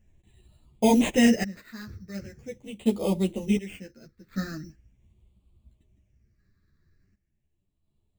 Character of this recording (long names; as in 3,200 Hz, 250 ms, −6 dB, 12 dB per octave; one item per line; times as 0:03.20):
aliases and images of a low sample rate 5,700 Hz, jitter 0%
phaser sweep stages 6, 0.41 Hz, lowest notch 790–1,600 Hz
sample-and-hold tremolo 1.4 Hz, depth 90%
a shimmering, thickened sound